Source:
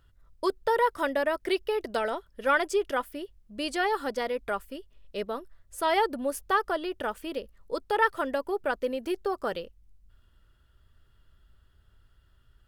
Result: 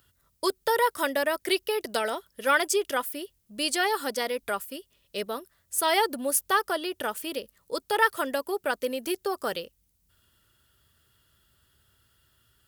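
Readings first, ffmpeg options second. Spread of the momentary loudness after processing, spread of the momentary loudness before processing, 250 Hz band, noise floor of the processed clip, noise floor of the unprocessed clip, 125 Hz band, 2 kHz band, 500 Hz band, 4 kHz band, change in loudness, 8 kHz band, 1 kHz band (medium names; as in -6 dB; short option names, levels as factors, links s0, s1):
12 LU, 13 LU, 0.0 dB, -71 dBFS, -63 dBFS, no reading, +2.5 dB, 0.0 dB, +7.0 dB, +1.5 dB, +13.5 dB, +0.5 dB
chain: -filter_complex "[0:a]acrossover=split=970[s0][s1];[s0]highpass=100[s2];[s1]crystalizer=i=3.5:c=0[s3];[s2][s3]amix=inputs=2:normalize=0"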